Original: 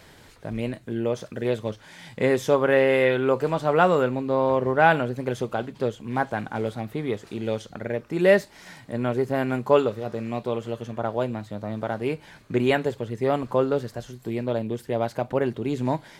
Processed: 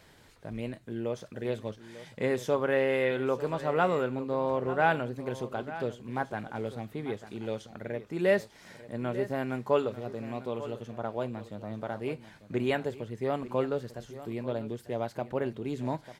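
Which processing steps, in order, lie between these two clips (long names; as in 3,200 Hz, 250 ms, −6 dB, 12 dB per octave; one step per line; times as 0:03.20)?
single-tap delay 895 ms −14.5 dB
level −7.5 dB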